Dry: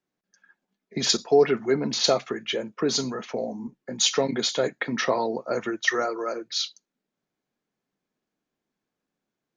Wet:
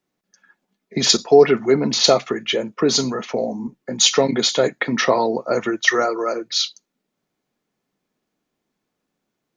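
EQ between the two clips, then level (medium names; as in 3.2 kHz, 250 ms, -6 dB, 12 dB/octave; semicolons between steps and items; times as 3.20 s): band-stop 1.6 kHz, Q 17; +7.0 dB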